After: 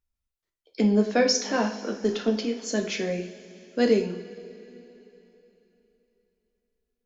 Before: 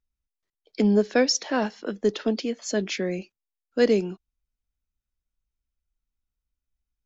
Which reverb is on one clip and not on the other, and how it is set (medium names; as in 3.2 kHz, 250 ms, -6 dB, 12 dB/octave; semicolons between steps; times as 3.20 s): two-slope reverb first 0.43 s, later 3.5 s, from -18 dB, DRR 2 dB; trim -2 dB